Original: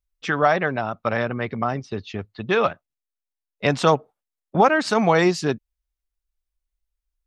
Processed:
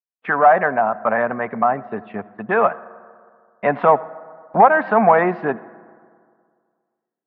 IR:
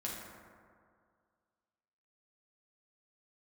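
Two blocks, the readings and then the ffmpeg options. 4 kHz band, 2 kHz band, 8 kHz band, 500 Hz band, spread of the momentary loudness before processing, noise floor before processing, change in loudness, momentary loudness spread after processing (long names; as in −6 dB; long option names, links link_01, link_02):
below −15 dB, +3.0 dB, below −40 dB, +3.5 dB, 13 LU, below −85 dBFS, +4.0 dB, 16 LU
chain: -filter_complex "[0:a]asplit=2[link_01][link_02];[link_02]highpass=frequency=720:poles=1,volume=14dB,asoftclip=type=tanh:threshold=-3.5dB[link_03];[link_01][link_03]amix=inputs=2:normalize=0,lowpass=frequency=1100:poles=1,volume=-6dB,highpass=150,equalizer=frequency=210:width_type=q:width=4:gain=6,equalizer=frequency=340:width_type=q:width=4:gain=-4,equalizer=frequency=710:width_type=q:width=4:gain=7,equalizer=frequency=1000:width_type=q:width=4:gain=6,equalizer=frequency=1700:width_type=q:width=4:gain=4,lowpass=frequency=2200:width=0.5412,lowpass=frequency=2200:width=1.3066,agate=range=-19dB:threshold=-42dB:ratio=16:detection=peak,asplit=2[link_04][link_05];[1:a]atrim=start_sample=2205,adelay=84[link_06];[link_05][link_06]afir=irnorm=-1:irlink=0,volume=-20.5dB[link_07];[link_04][link_07]amix=inputs=2:normalize=0,volume=-1dB"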